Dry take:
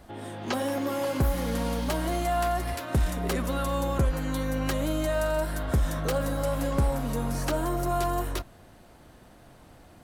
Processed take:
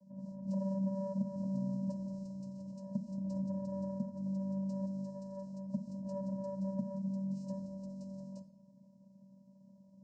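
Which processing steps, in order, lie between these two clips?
brick-wall band-stop 620–5,300 Hz
downward compressor 2 to 1, threshold −30 dBFS, peak gain reduction 5.5 dB
channel vocoder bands 8, square 193 Hz
on a send: convolution reverb RT60 0.70 s, pre-delay 3 ms, DRR 10 dB
on the sum: level −4 dB

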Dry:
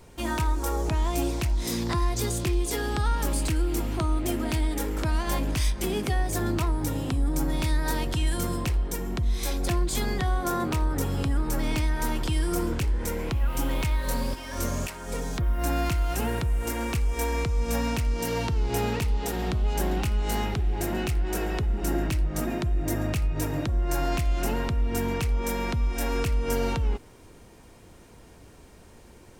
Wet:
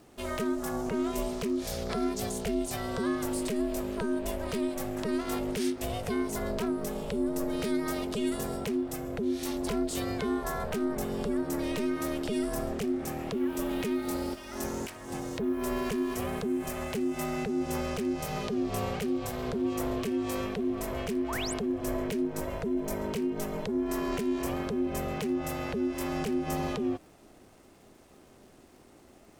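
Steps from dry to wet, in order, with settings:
ring modulation 310 Hz
sound drawn into the spectrogram rise, 0:21.28–0:21.54, 790–9,900 Hz −34 dBFS
surface crackle 350 per second −52 dBFS
level −3 dB

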